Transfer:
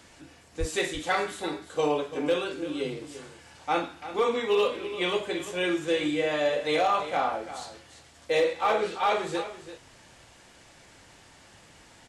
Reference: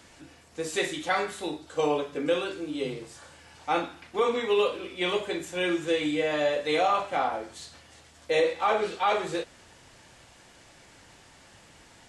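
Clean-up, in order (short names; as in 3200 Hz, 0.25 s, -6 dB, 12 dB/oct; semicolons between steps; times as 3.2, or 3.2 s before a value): clip repair -17 dBFS; 0.59–0.71 HPF 140 Hz 24 dB/oct; inverse comb 0.339 s -13 dB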